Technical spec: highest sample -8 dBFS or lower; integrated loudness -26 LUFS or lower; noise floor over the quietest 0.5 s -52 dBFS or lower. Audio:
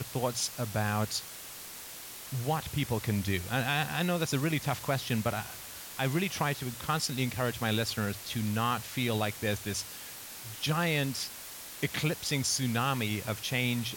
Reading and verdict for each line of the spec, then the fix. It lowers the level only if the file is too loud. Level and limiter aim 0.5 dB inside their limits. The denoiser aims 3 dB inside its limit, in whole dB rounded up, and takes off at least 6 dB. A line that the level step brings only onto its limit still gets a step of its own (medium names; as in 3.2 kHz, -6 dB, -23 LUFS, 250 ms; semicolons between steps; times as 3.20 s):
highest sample -16.0 dBFS: pass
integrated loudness -32.0 LUFS: pass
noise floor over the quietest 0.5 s -45 dBFS: fail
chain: noise reduction 10 dB, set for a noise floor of -45 dBFS